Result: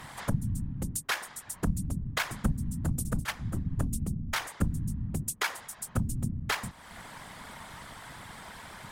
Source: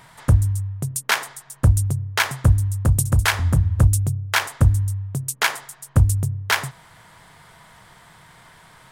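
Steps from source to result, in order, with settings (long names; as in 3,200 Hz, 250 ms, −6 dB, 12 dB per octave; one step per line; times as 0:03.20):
0:03.24–0:03.65: noise gate −16 dBFS, range −10 dB
downward compressor 2.5 to 1, threshold −38 dBFS, peak gain reduction 18.5 dB
random phases in short frames
level +3 dB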